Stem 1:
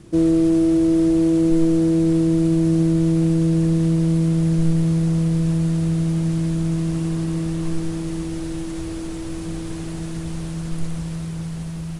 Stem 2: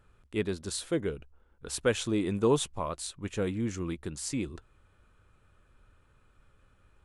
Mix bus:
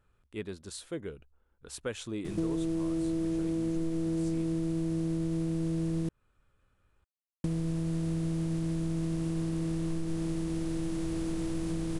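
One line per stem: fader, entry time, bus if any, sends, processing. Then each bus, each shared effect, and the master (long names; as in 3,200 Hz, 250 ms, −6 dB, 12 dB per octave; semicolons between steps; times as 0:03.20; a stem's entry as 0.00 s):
−6.0 dB, 2.25 s, muted 0:06.09–0:07.44, no send, compressor on every frequency bin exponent 0.6
−7.5 dB, 0.00 s, no send, no processing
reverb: not used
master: downward compressor 5 to 1, threshold −29 dBFS, peak gain reduction 11 dB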